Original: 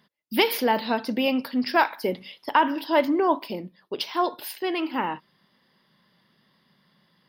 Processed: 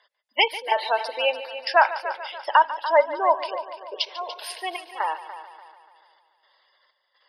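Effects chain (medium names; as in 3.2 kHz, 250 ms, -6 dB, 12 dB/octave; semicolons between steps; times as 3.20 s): spectral gate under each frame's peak -20 dB strong; elliptic band-pass 560–9900 Hz, stop band 40 dB; trance gate "xx.xxx.x." 63 bpm -12 dB; multi-head delay 145 ms, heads first and second, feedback 48%, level -15 dB; trim +4.5 dB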